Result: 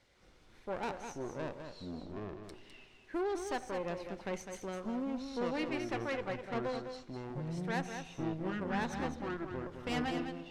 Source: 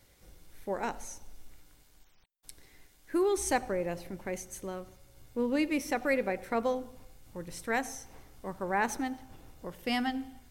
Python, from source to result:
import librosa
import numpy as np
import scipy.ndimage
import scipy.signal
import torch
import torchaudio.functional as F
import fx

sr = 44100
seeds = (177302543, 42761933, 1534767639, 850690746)

y = scipy.signal.sosfilt(scipy.signal.butter(2, 4700.0, 'lowpass', fs=sr, output='sos'), x)
y = fx.low_shelf(y, sr, hz=220.0, db=-8.0)
y = fx.rider(y, sr, range_db=4, speed_s=0.5)
y = fx.tube_stage(y, sr, drive_db=30.0, bias=0.75)
y = fx.echo_pitch(y, sr, ms=148, semitones=-7, count=2, db_per_echo=-3.0)
y = y + 10.0 ** (-7.5 / 20.0) * np.pad(y, (int(205 * sr / 1000.0), 0))[:len(y)]